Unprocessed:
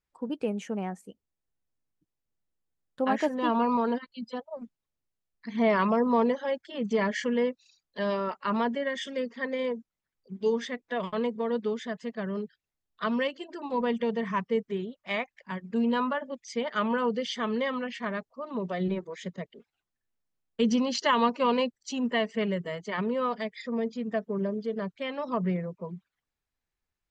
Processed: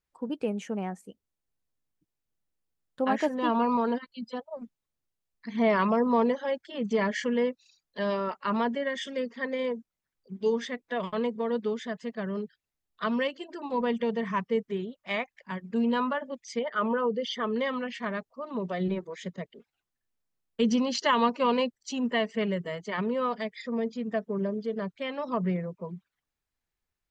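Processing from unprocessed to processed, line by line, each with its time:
16.59–17.56 formant sharpening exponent 1.5

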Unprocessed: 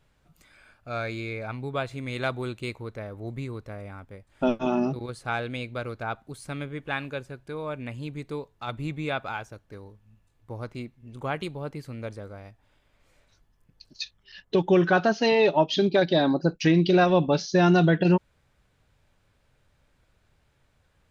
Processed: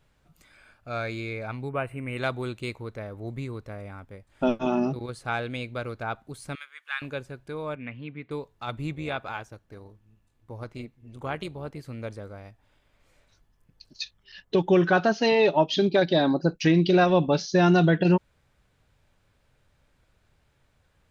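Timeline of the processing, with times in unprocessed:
1.69–2.18 spectral gain 3100–7900 Hz -21 dB
6.55–7.02 Chebyshev high-pass 1300 Hz, order 3
7.75–8.31 speaker cabinet 130–3000 Hz, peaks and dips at 140 Hz -3 dB, 370 Hz -8 dB, 600 Hz -6 dB, 880 Hz -7 dB, 2200 Hz +4 dB
8.93–11.87 AM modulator 220 Hz, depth 30%

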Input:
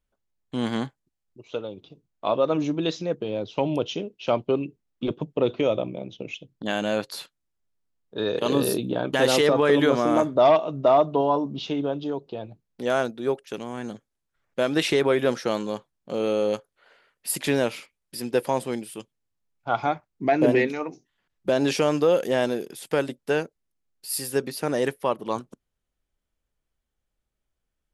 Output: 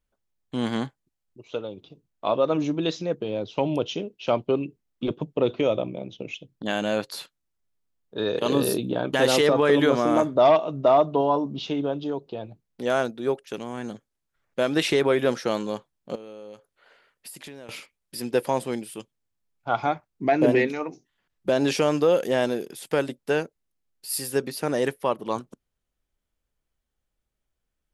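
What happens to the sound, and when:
16.15–17.69 compressor 10:1, threshold -38 dBFS

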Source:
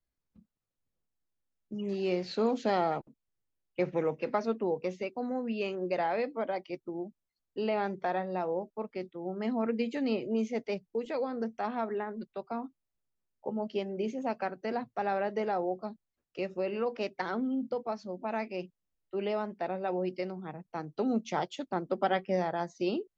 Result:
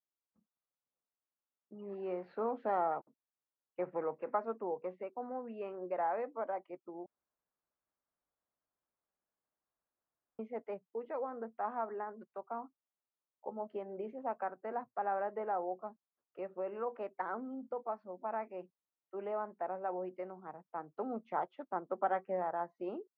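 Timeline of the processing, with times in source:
7.06–10.39 room tone
13.72–14.13 three-band squash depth 70%
whole clip: LPF 1200 Hz 24 dB/oct; differentiator; AGC gain up to 5 dB; gain +11.5 dB

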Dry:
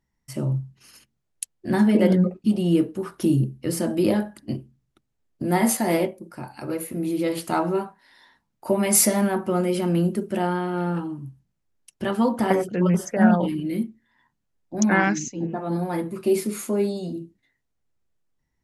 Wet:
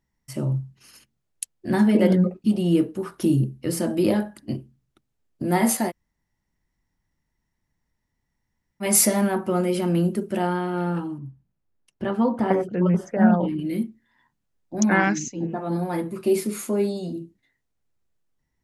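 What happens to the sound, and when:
5.89–8.83 room tone, crossfade 0.06 s
11.18–13.59 LPF 1500 Hz 6 dB/oct

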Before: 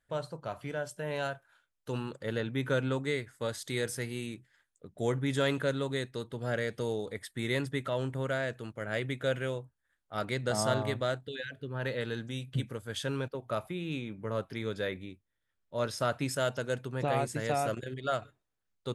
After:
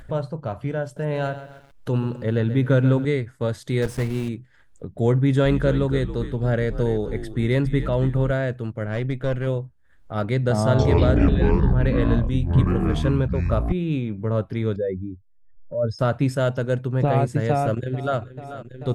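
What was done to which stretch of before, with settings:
0.83–3.05 lo-fi delay 0.133 s, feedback 35%, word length 9-bit, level -12 dB
3.82–4.3 block floating point 3-bit
5.17–8.31 frequency-shifting echo 0.277 s, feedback 34%, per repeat -87 Hz, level -12.5 dB
8.86–9.47 tube stage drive 27 dB, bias 0.65
10.6–13.72 echoes that change speed 0.187 s, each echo -7 st, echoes 3
14.76–15.99 spectral contrast raised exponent 2.3
17.49–18.18 echo throw 0.44 s, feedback 70%, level -16 dB
whole clip: tilt -3 dB/oct; upward compressor, threshold -34 dBFS; gain +6 dB

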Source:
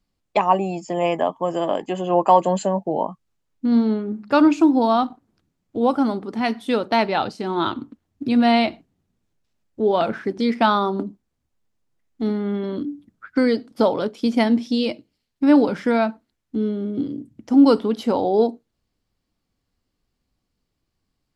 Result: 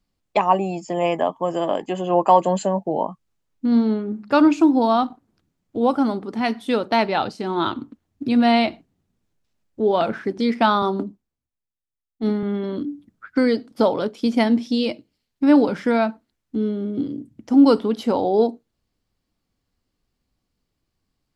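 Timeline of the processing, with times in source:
10.82–12.43 three-band expander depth 70%

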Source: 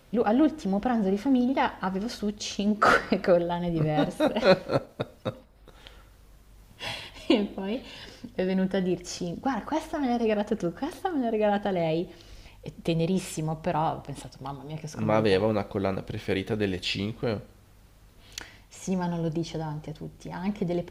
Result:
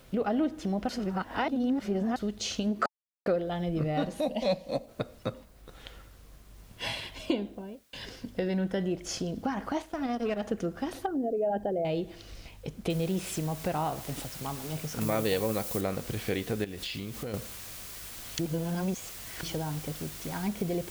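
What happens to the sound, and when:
0.89–2.16 reverse
2.86–3.26 mute
4.2–4.88 fixed phaser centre 380 Hz, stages 6
7.2–7.93 studio fade out
9.82–10.43 power-law curve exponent 1.4
11.06–11.85 formant sharpening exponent 2
12.9 noise floor step -69 dB -45 dB
15.01–15.81 high shelf 5900 Hz +12 dB
16.64–17.34 compressor, threshold -34 dBFS
18.39–19.43 reverse
whole clip: notch 880 Hz, Q 13; compressor 2:1, threshold -32 dBFS; gain +1.5 dB

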